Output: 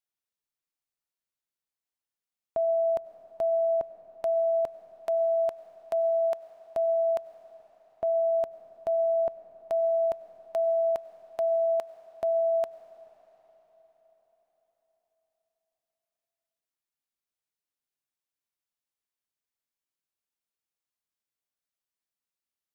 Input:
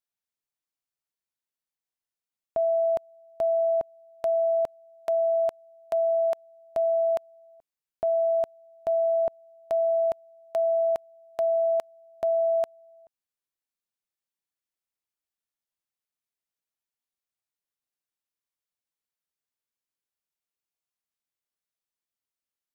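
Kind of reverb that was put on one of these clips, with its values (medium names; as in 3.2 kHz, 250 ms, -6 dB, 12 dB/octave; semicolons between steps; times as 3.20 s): algorithmic reverb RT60 4.9 s, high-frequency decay 0.9×, pre-delay 55 ms, DRR 12 dB; trim -2 dB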